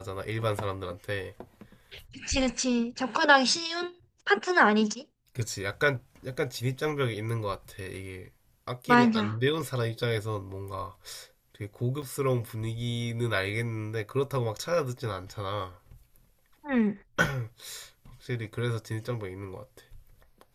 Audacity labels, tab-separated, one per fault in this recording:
12.020000	12.030000	drop-out 5.8 ms

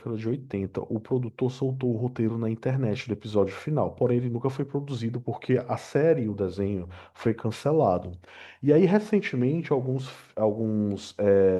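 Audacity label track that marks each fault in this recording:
3.320000	3.320000	drop-out 2.7 ms

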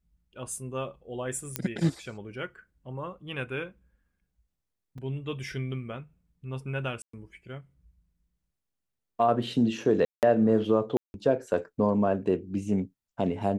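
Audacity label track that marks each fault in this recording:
1.560000	1.560000	click −10 dBFS
4.980000	4.980000	drop-out 4.1 ms
7.020000	7.130000	drop-out 114 ms
10.050000	10.230000	drop-out 178 ms
10.970000	11.140000	drop-out 171 ms

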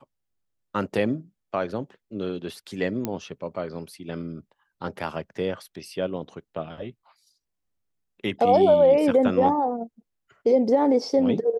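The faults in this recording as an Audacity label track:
3.050000	3.050000	click −13 dBFS

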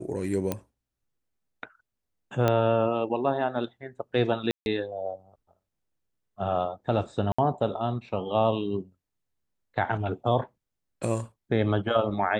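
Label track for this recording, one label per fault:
0.520000	0.520000	click −13 dBFS
2.480000	2.480000	click −11 dBFS
4.510000	4.660000	drop-out 151 ms
7.320000	7.380000	drop-out 65 ms

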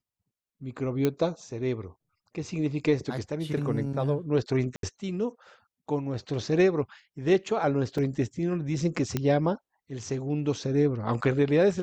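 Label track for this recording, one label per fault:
1.050000	1.050000	click −12 dBFS
4.760000	4.830000	drop-out 72 ms
7.980000	7.980000	drop-out 4.1 ms
9.170000	9.170000	click −13 dBFS

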